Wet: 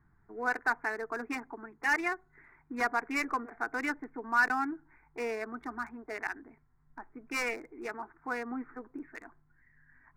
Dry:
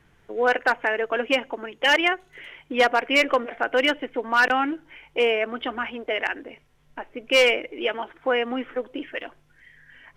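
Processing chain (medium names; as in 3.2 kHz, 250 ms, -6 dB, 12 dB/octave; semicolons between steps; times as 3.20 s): local Wiener filter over 15 samples; dynamic bell 460 Hz, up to +6 dB, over -36 dBFS, Q 2.4; static phaser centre 1.3 kHz, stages 4; trim -5.5 dB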